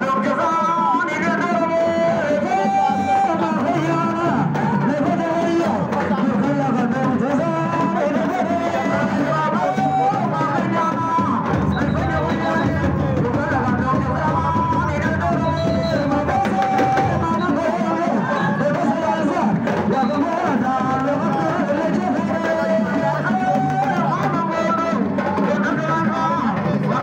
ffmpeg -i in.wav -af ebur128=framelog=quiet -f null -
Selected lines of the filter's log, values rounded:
Integrated loudness:
  I:         -19.0 LUFS
  Threshold: -29.0 LUFS
Loudness range:
  LRA:         0.9 LU
  Threshold: -39.1 LUFS
  LRA low:   -19.4 LUFS
  LRA high:  -18.4 LUFS